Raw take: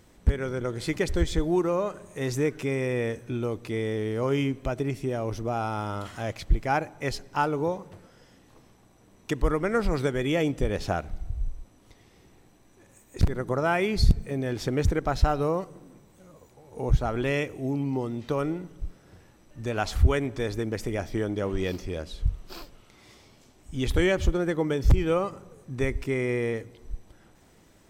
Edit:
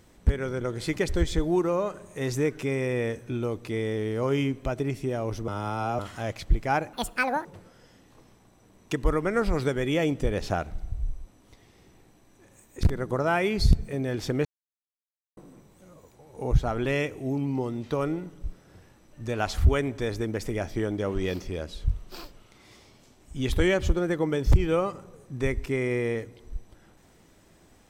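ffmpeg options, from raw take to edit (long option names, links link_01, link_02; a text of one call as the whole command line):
ffmpeg -i in.wav -filter_complex "[0:a]asplit=7[link_01][link_02][link_03][link_04][link_05][link_06][link_07];[link_01]atrim=end=5.482[link_08];[link_02]atrim=start=5.478:end=5.992,asetpts=PTS-STARTPTS,areverse[link_09];[link_03]atrim=start=5.988:end=6.934[link_10];[link_04]atrim=start=6.93:end=7.83,asetpts=PTS-STARTPTS,asetrate=76293,aresample=44100,atrim=end_sample=22942,asetpts=PTS-STARTPTS[link_11];[link_05]atrim=start=7.826:end=14.83,asetpts=PTS-STARTPTS,afade=type=out:start_time=7:duration=0.004:curve=hsin[link_12];[link_06]atrim=start=14.83:end=15.75,asetpts=PTS-STARTPTS,volume=0[link_13];[link_07]atrim=start=15.75,asetpts=PTS-STARTPTS,afade=type=in:duration=0.004:curve=hsin[link_14];[link_08][link_09]acrossfade=duration=0.004:curve1=hsin:curve2=hsin[link_15];[link_15][link_10]acrossfade=duration=0.004:curve1=hsin:curve2=hsin[link_16];[link_16][link_11]acrossfade=duration=0.004:curve1=hsin:curve2=hsin[link_17];[link_12][link_13][link_14]concat=n=3:v=0:a=1[link_18];[link_17][link_18]acrossfade=duration=0.004:curve1=hsin:curve2=hsin" out.wav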